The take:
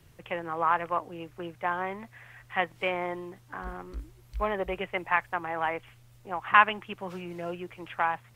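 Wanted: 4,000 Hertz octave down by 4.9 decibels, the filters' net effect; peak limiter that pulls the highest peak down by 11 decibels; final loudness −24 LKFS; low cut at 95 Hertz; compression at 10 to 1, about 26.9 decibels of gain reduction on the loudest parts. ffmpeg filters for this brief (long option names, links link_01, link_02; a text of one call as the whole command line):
ffmpeg -i in.wav -af "highpass=95,equalizer=frequency=4000:width_type=o:gain=-8.5,acompressor=threshold=-42dB:ratio=10,volume=25dB,alimiter=limit=-11.5dB:level=0:latency=1" out.wav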